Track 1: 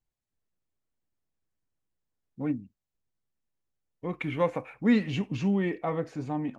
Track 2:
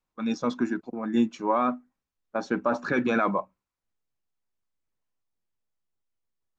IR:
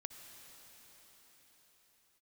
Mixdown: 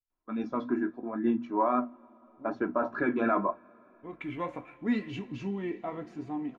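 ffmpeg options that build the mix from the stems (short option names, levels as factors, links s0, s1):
-filter_complex "[0:a]highshelf=f=5200:g=-8.5,bandreject=f=600:w=12,volume=0.631,afade=t=in:st=3.87:d=0.39:silence=0.281838,asplit=2[s0][s1];[s1]volume=0.447[s2];[1:a]lowpass=1700,bandreject=f=60:t=h:w=6,bandreject=f=120:t=h:w=6,bandreject=f=180:t=h:w=6,bandreject=f=240:t=h:w=6,adelay=100,volume=1.06,asplit=2[s3][s4];[s4]volume=0.141[s5];[2:a]atrim=start_sample=2205[s6];[s2][s5]amix=inputs=2:normalize=0[s7];[s7][s6]afir=irnorm=-1:irlink=0[s8];[s0][s3][s8]amix=inputs=3:normalize=0,flanger=delay=9.1:depth=9.2:regen=-53:speed=0.79:shape=triangular,aecho=1:1:3:0.5"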